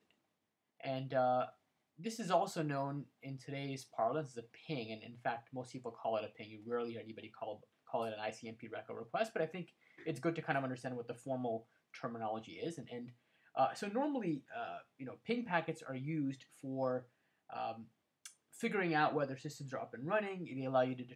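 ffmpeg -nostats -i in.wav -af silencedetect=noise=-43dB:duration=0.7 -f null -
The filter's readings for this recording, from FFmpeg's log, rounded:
silence_start: 0.00
silence_end: 0.80 | silence_duration: 0.80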